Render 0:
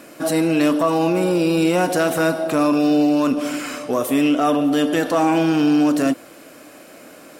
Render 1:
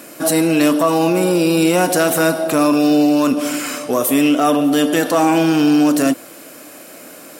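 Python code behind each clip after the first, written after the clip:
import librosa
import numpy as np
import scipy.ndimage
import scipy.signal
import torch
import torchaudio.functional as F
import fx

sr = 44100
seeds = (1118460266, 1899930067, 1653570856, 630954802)

y = scipy.signal.sosfilt(scipy.signal.butter(2, 93.0, 'highpass', fs=sr, output='sos'), x)
y = fx.high_shelf(y, sr, hz=7000.0, db=10.5)
y = y * 10.0 ** (3.0 / 20.0)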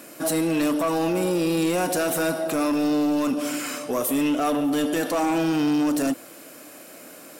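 y = 10.0 ** (-11.0 / 20.0) * np.tanh(x / 10.0 ** (-11.0 / 20.0))
y = y * 10.0 ** (-6.0 / 20.0)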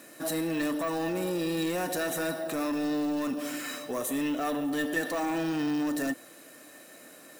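y = np.repeat(x[::2], 2)[:len(x)]
y = fx.small_body(y, sr, hz=(1800.0, 3900.0), ring_ms=90, db=18)
y = y * 10.0 ** (-7.5 / 20.0)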